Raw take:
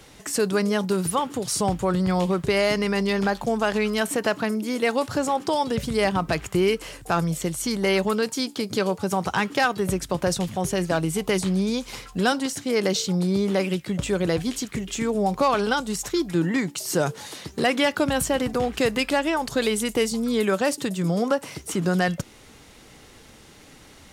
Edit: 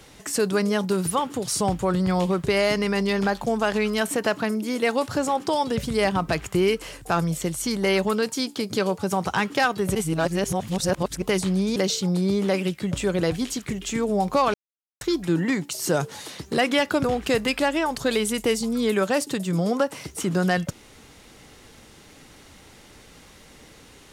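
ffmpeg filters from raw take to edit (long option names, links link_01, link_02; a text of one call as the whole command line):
ffmpeg -i in.wav -filter_complex "[0:a]asplit=7[link_01][link_02][link_03][link_04][link_05][link_06][link_07];[link_01]atrim=end=9.952[link_08];[link_02]atrim=start=9.948:end=11.222,asetpts=PTS-STARTPTS,areverse[link_09];[link_03]atrim=start=11.218:end=11.762[link_10];[link_04]atrim=start=12.818:end=15.6,asetpts=PTS-STARTPTS,afade=type=out:start_time=2.778:duration=0.004:curve=hsin[link_11];[link_05]atrim=start=15.6:end=16.07,asetpts=PTS-STARTPTS,volume=0[link_12];[link_06]atrim=start=16.07:end=18.102,asetpts=PTS-STARTPTS,afade=type=in:duration=0.004:curve=hsin[link_13];[link_07]atrim=start=18.548[link_14];[link_08][link_09]acrossfade=duration=0.004:curve1=hsin:curve2=hsin[link_15];[link_15][link_10]acrossfade=duration=0.004:curve1=hsin:curve2=hsin[link_16];[link_11][link_12][link_13]concat=n=3:v=0:a=1[link_17];[link_16][link_17]acrossfade=duration=0.004:curve1=hsin:curve2=hsin[link_18];[link_18][link_14]acrossfade=duration=0.004:curve1=hsin:curve2=hsin" out.wav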